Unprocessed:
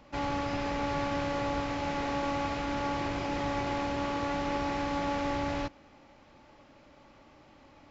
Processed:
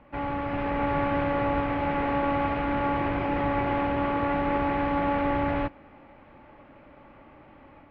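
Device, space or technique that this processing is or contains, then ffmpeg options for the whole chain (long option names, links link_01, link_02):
action camera in a waterproof case: -af "lowpass=frequency=2500:width=0.5412,lowpass=frequency=2500:width=1.3066,dynaudnorm=framelen=410:gausssize=3:maxgain=4.5dB,volume=1.5dB" -ar 44100 -c:a aac -b:a 48k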